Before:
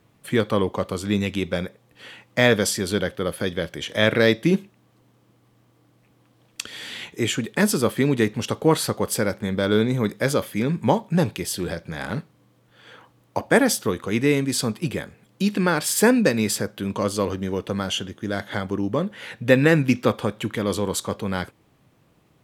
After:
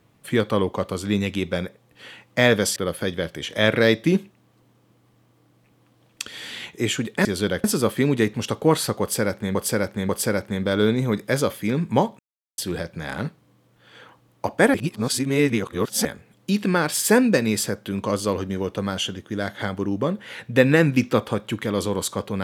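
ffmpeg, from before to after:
-filter_complex "[0:a]asplit=10[a][b][c][d][e][f][g][h][i][j];[a]atrim=end=2.762[k];[b]atrim=start=3.148:end=7.642[l];[c]atrim=start=2.758:end=3.152[m];[d]atrim=start=7.638:end=9.552[n];[e]atrim=start=9.008:end=9.552[o];[f]atrim=start=9.008:end=11.11,asetpts=PTS-STARTPTS,afade=t=out:st=2.098:d=0.004:c=hsin[p];[g]atrim=start=11.11:end=11.5,asetpts=PTS-STARTPTS,volume=0[q];[h]atrim=start=11.5:end=13.662,asetpts=PTS-STARTPTS,afade=t=in:d=0.004:c=hsin[r];[i]atrim=start=13.658:end=14.972,asetpts=PTS-STARTPTS,areverse[s];[j]atrim=start=14.968[t];[k][l]acrossfade=d=0.004:c1=hsin:c2=hsin[u];[u][m]acrossfade=d=0.004:c1=hsin:c2=hsin[v];[v][n]acrossfade=d=0.004:c1=hsin:c2=hsin[w];[w][o]acrossfade=d=0.004:c1=hsin:c2=hsin[x];[p][q][r]concat=n=3:v=0:a=1[y];[x][y]acrossfade=d=0.004:c1=hsin:c2=hsin[z];[z][s]acrossfade=d=0.004:c1=hsin:c2=hsin[aa];[aa][t]acrossfade=d=0.004:c1=hsin:c2=hsin"

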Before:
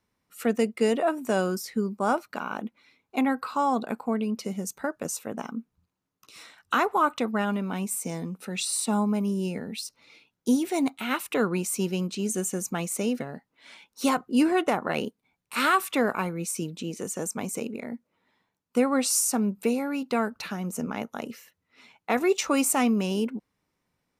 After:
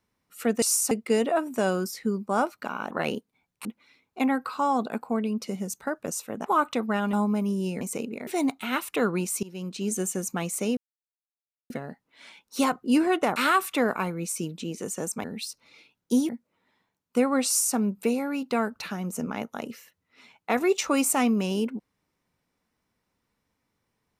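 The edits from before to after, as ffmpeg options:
-filter_complex "[0:a]asplit=14[a][b][c][d][e][f][g][h][i][j][k][l][m][n];[a]atrim=end=0.622[o];[b]atrim=start=19.058:end=19.352[p];[c]atrim=start=0.618:end=2.622[q];[d]atrim=start=14.808:end=15.552[r];[e]atrim=start=2.618:end=5.422[s];[f]atrim=start=6.898:end=7.582[t];[g]atrim=start=8.918:end=9.602[u];[h]atrim=start=17.428:end=17.892[v];[i]atrim=start=10.648:end=11.81,asetpts=PTS-STARTPTS,afade=t=out:st=1.158:d=0.004:c=hsin:silence=0.0749894[w];[j]atrim=start=11.81:end=13.15,asetpts=PTS-STARTPTS,afade=t=in:d=0.44:silence=0.0749894,afade=t=out:st=1.336:d=0.004:c=hsin,apad=pad_dur=0.93[x];[k]atrim=start=13.15:end=14.812,asetpts=PTS-STARTPTS,afade=t=in:d=0.004:c=hsin[y];[l]atrim=start=15.548:end=17.432[z];[m]atrim=start=9.598:end=10.652[aa];[n]atrim=start=17.888[ab];[o][p]acrossfade=d=0.004:c1=hsin:c2=hsin[ac];[ac][q]acrossfade=d=0.004:c1=hsin:c2=hsin[ad];[ad][r]acrossfade=d=0.004:c1=hsin:c2=hsin[ae];[ae][s]acrossfade=d=0.004:c1=hsin:c2=hsin[af];[af][t]acrossfade=d=0.004:c1=hsin:c2=hsin[ag];[ag][u]acrossfade=d=0.004:c1=hsin:c2=hsin[ah];[ah][v]acrossfade=d=0.004:c1=hsin:c2=hsin[ai];[w][x][y]concat=n=3:v=0:a=1[aj];[ai][aj]acrossfade=d=0.004:c1=hsin:c2=hsin[ak];[ak][z]acrossfade=d=0.004:c1=hsin:c2=hsin[al];[al][aa]acrossfade=d=0.004:c1=hsin:c2=hsin[am];[am][ab]acrossfade=d=0.004:c1=hsin:c2=hsin"

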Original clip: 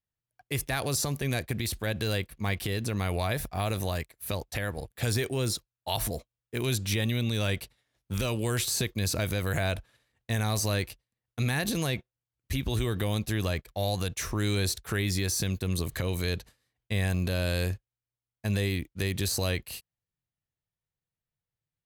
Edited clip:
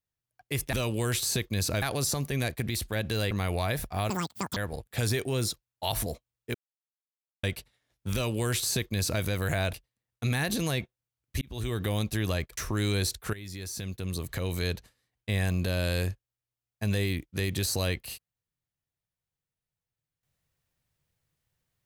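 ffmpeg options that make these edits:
-filter_complex "[0:a]asplit=12[a][b][c][d][e][f][g][h][i][j][k][l];[a]atrim=end=0.732[m];[b]atrim=start=8.178:end=9.272[n];[c]atrim=start=0.728:end=2.222[o];[d]atrim=start=2.918:end=3.714[p];[e]atrim=start=3.71:end=4.61,asetpts=PTS-STARTPTS,asetrate=85554,aresample=44100[q];[f]atrim=start=4.606:end=6.59,asetpts=PTS-STARTPTS,afade=t=out:st=1.98:d=0.004:c=hsin[r];[g]atrim=start=6.59:end=7.48,asetpts=PTS-STARTPTS,volume=0[s];[h]atrim=start=7.48:end=9.782,asetpts=PTS-STARTPTS,afade=t=in:d=0.004:c=hsin[t];[i]atrim=start=10.888:end=12.57,asetpts=PTS-STARTPTS,afade=t=out:st=1.678:d=0.004:c=hsin[u];[j]atrim=start=12.57:end=13.732,asetpts=PTS-STARTPTS,afade=t=in:d=0.53:c=qsin[v];[k]atrim=start=14.198:end=14.96,asetpts=PTS-STARTPTS,afade=t=out:st=0.758:d=0.004:c=hsin:silence=0.149624[w];[l]atrim=start=14.96,asetpts=PTS-STARTPTS,afade=t=in:d=1.35:silence=0.149624[x];[m][n]acrossfade=d=0.004:c1=hsin:c2=hsin[y];[y][o]acrossfade=d=0.004:c1=hsin:c2=hsin[z];[z][p]acrossfade=d=0.004:c1=hsin:c2=hsin[aa];[aa][q]acrossfade=d=0.004:c1=hsin:c2=hsin[ab];[r][s][t]concat=n=3:v=0:a=1[ac];[ab][ac]acrossfade=d=0.004:c1=hsin:c2=hsin[ad];[u][v]concat=n=2:v=0:a=1[ae];[ad][ae]acrossfade=d=0.004:c1=hsin:c2=hsin[af];[w][x]concat=n=2:v=0:a=1[ag];[af][ag]acrossfade=d=0.004:c1=hsin:c2=hsin"

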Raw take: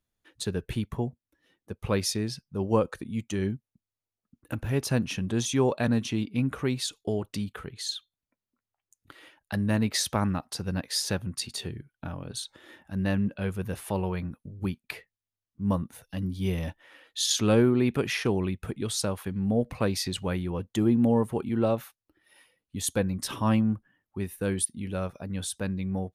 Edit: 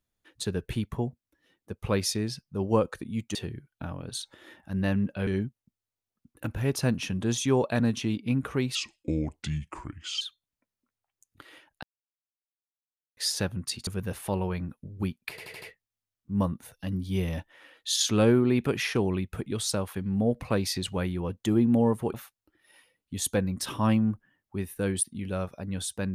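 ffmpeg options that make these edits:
-filter_complex "[0:a]asplit=13[a][b][c][d][e][f][g][h][i][j][k][l][m];[a]atrim=end=3.352[n];[b]atrim=start=11.568:end=13.492[o];[c]atrim=start=3.348:end=6.834[p];[d]atrim=start=6.83:end=7.91,asetpts=PTS-STARTPTS,asetrate=32634,aresample=44100,atrim=end_sample=64362,asetpts=PTS-STARTPTS[q];[e]atrim=start=7.906:end=9.53,asetpts=PTS-STARTPTS,afade=t=out:st=1.62:d=0.004:c=hsin[r];[f]atrim=start=9.53:end=10.87,asetpts=PTS-STARTPTS,volume=0[s];[g]atrim=start=10.87:end=11.572,asetpts=PTS-STARTPTS,afade=t=in:d=0.004:c=hsin[t];[h]atrim=start=13.488:end=15.002[u];[i]atrim=start=14.918:end=15.002[v];[j]atrim=start=14.918:end=15.002[w];[k]atrim=start=14.918:end=15.002[x];[l]atrim=start=14.918:end=21.442[y];[m]atrim=start=21.758[z];[n][o]acrossfade=d=0.004:c1=hsin:c2=hsin[aa];[aa][p]acrossfade=d=0.004:c1=hsin:c2=hsin[ab];[ab][q]acrossfade=d=0.004:c1=hsin:c2=hsin[ac];[r][s][t]concat=n=3:v=0:a=1[ad];[ac][ad]acrossfade=d=0.004:c1=hsin:c2=hsin[ae];[ae][u]acrossfade=d=0.004:c1=hsin:c2=hsin[af];[af][v]acrossfade=d=0.004:c1=hsin:c2=hsin[ag];[ag][w]acrossfade=d=0.004:c1=hsin:c2=hsin[ah];[ah][x]acrossfade=d=0.004:c1=hsin:c2=hsin[ai];[ai][y]acrossfade=d=0.004:c1=hsin:c2=hsin[aj];[aj][z]acrossfade=d=0.004:c1=hsin:c2=hsin"

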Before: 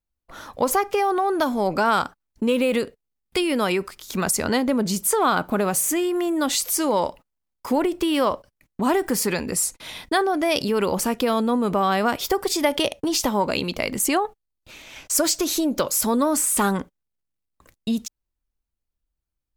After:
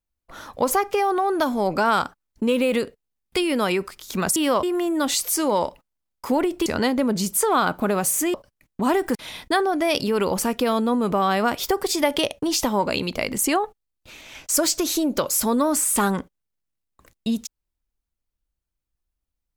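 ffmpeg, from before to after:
-filter_complex "[0:a]asplit=6[a][b][c][d][e][f];[a]atrim=end=4.362[g];[b]atrim=start=8.068:end=8.342[h];[c]atrim=start=6.038:end=8.072[i];[d]atrim=start=4.358:end=6.042[j];[e]atrim=start=8.338:end=9.152[k];[f]atrim=start=9.758[l];[g][h]acrossfade=d=0.004:c1=hsin:c2=hsin[m];[m][i]acrossfade=d=0.004:c1=hsin:c2=hsin[n];[n][j]acrossfade=d=0.004:c1=hsin:c2=hsin[o];[o][k]acrossfade=d=0.004:c1=hsin:c2=hsin[p];[p][l]acrossfade=d=0.004:c1=hsin:c2=hsin"

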